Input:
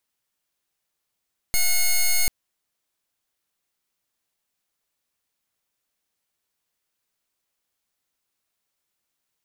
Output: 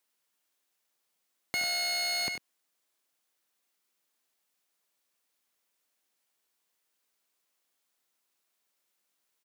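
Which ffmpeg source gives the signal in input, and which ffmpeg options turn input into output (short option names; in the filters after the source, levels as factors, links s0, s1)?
-f lavfi -i "aevalsrc='0.119*(2*lt(mod(2170*t,1),0.08)-1)':d=0.74:s=44100"
-filter_complex "[0:a]highpass=220,acrossover=split=4400[s0][s1];[s1]acompressor=threshold=0.00891:ratio=4:attack=1:release=60[s2];[s0][s2]amix=inputs=2:normalize=0,asplit=2[s3][s4];[s4]aecho=0:1:73|97:0.251|0.316[s5];[s3][s5]amix=inputs=2:normalize=0"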